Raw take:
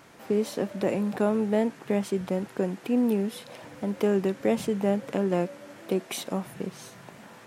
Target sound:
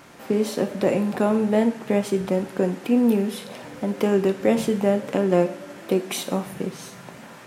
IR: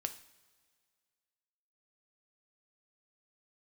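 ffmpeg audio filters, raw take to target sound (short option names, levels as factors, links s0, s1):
-filter_complex "[1:a]atrim=start_sample=2205[s0];[0:a][s0]afir=irnorm=-1:irlink=0,volume=2"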